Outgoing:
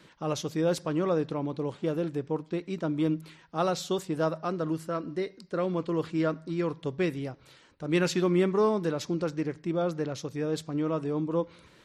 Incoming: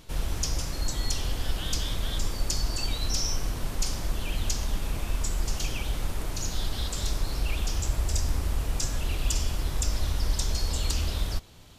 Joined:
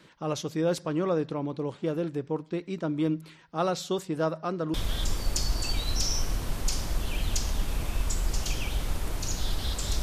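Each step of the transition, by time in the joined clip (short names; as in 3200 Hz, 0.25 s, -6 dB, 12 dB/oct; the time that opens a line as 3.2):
outgoing
4.74 switch to incoming from 1.88 s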